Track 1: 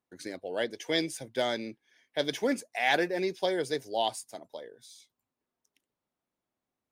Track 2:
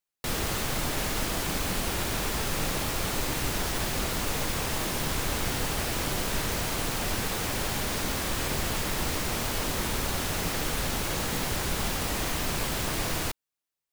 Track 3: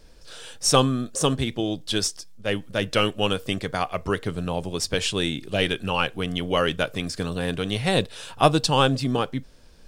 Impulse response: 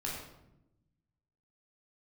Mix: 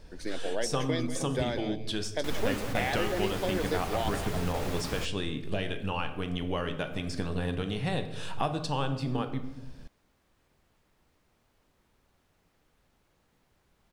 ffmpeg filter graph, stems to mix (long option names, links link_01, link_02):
-filter_complex "[0:a]acompressor=threshold=-31dB:ratio=6,volume=3dB,asplit=3[link_01][link_02][link_03];[link_02]volume=-10.5dB[link_04];[1:a]adelay=2000,volume=-6dB[link_05];[2:a]acompressor=threshold=-31dB:ratio=4,volume=-1dB,asplit=2[link_06][link_07];[link_07]volume=-7dB[link_08];[link_03]apad=whole_len=702462[link_09];[link_05][link_09]sidechaingate=range=-33dB:threshold=-53dB:ratio=16:detection=peak[link_10];[3:a]atrim=start_sample=2205[link_11];[link_08][link_11]afir=irnorm=-1:irlink=0[link_12];[link_04]aecho=0:1:192:1[link_13];[link_01][link_10][link_06][link_12][link_13]amix=inputs=5:normalize=0,highshelf=frequency=3600:gain=-8"